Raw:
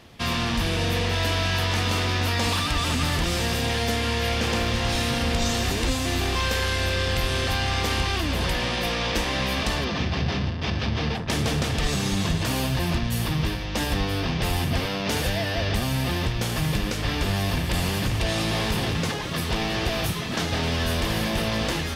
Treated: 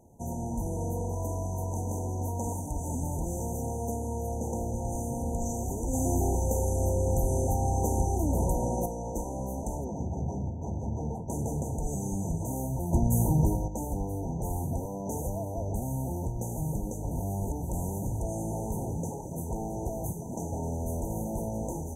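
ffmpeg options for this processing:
ffmpeg -i in.wav -filter_complex "[0:a]asettb=1/sr,asplit=3[link_01][link_02][link_03];[link_01]atrim=end=5.934[link_04];[link_02]atrim=start=5.93:end=8.86,asetpts=PTS-STARTPTS,afade=type=in:duration=0.004:curve=qsin,afade=type=out:start_time=2.926:duration=0.004:curve=qsin,acontrast=58[link_05];[link_03]atrim=start=8.856[link_06];[link_04][link_05]acrossfade=duration=0.004:curve1=hsin:curve2=qsin[link_07];[link_07][link_06]acrossfade=duration=0.004:curve1=qsin:curve2=hsin,asplit=5[link_08][link_09][link_10][link_11][link_12];[link_08]atrim=end=12.932[link_13];[link_09]atrim=start=12.928:end=13.682,asetpts=PTS-STARTPTS,volume=8dB[link_14];[link_10]atrim=start=13.678:end=17.112[link_15];[link_11]atrim=start=17.108:end=17.622,asetpts=PTS-STARTPTS,areverse[link_16];[link_12]atrim=start=17.618[link_17];[link_13][link_14]acrossfade=duration=0.004:curve1=hsin:curve2=hsin[link_18];[link_18][link_15]acrossfade=duration=0.004:curve1=hsin:curve2=hsin[link_19];[link_19][link_16]acrossfade=duration=0.004:curve1=hsin:curve2=hsin[link_20];[link_20][link_17]acrossfade=duration=0.004:curve1=hsin:curve2=hsin,afftfilt=real='re*(1-between(b*sr/4096,980,5900))':imag='im*(1-between(b*sr/4096,980,5900))':win_size=4096:overlap=0.75,volume=-6.5dB" out.wav

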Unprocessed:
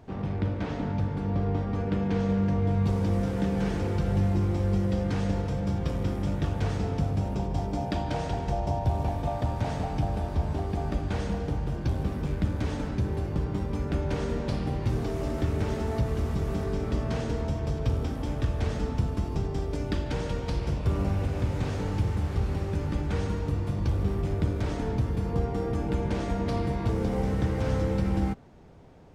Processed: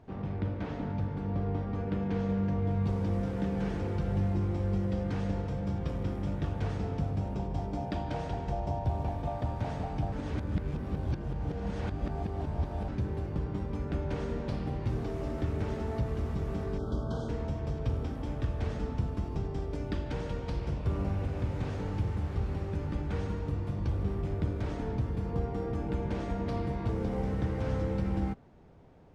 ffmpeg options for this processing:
ffmpeg -i in.wav -filter_complex "[0:a]asettb=1/sr,asplit=3[link_01][link_02][link_03];[link_01]atrim=end=16.784[link_04];[link_02]atrim=start=16.78:end=17.29,asetpts=PTS-STARTPTS,afade=type=in:duration=0.004:curve=qsin,afade=type=out:start_time=0.506:duration=0.004:curve=qsin,asuperstop=centerf=2200:order=20:qfactor=1.5[link_05];[link_03]atrim=start=17.286[link_06];[link_04][link_05]acrossfade=duration=0.004:curve1=hsin:curve2=qsin[link_07];[link_07][link_06]acrossfade=duration=0.004:curve1=qsin:curve2=hsin,asplit=3[link_08][link_09][link_10];[link_08]atrim=end=10.122[link_11];[link_09]atrim=start=10.118:end=12.882,asetpts=PTS-STARTPTS,areverse[link_12];[link_10]atrim=start=12.878[link_13];[link_11][link_12]acrossfade=duration=0.004:curve1=hsin:curve2=hsin[link_14];[link_14][link_13]acrossfade=duration=0.004:curve1=hsin:curve2=hsin,highshelf=frequency=4900:gain=-9,volume=-4.5dB" out.wav

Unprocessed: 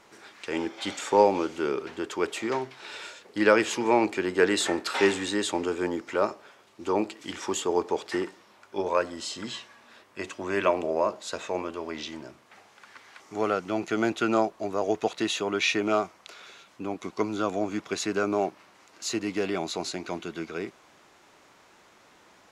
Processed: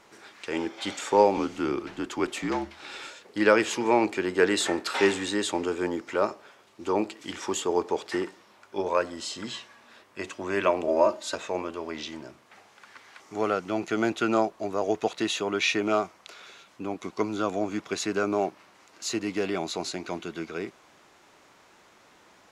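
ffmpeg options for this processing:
ffmpeg -i in.wav -filter_complex "[0:a]asettb=1/sr,asplit=3[link_01][link_02][link_03];[link_01]atrim=end=1.374[link_04];[link_02]atrim=start=1.37:end=3.11,asetpts=PTS-STARTPTS,afade=type=in:duration=0.004:curve=qsin,afade=type=out:start_time=1.736:duration=0.004:curve=qsin,afreqshift=-51[link_05];[link_03]atrim=start=3.106[link_06];[link_04][link_05]acrossfade=duration=0.004:curve1=hsin:curve2=qsin[link_07];[link_07][link_06]acrossfade=duration=0.004:curve1=qsin:curve2=hsin,asettb=1/sr,asplit=3[link_08][link_09][link_10];[link_08]atrim=end=10.874[link_11];[link_09]atrim=start=10.87:end=11.35,asetpts=PTS-STARTPTS,afade=type=in:duration=0.004:curve=qsin,afade=type=out:start_time=0.476:duration=0.004:curve=qsin,aecho=1:1:3.3:0.97,atrim=end_sample=21168[link_12];[link_10]atrim=start=11.346[link_13];[link_11][link_12]acrossfade=duration=0.004:curve1=hsin:curve2=qsin[link_14];[link_14][link_13]acrossfade=duration=0.004:curve1=qsin:curve2=hsin" out.wav

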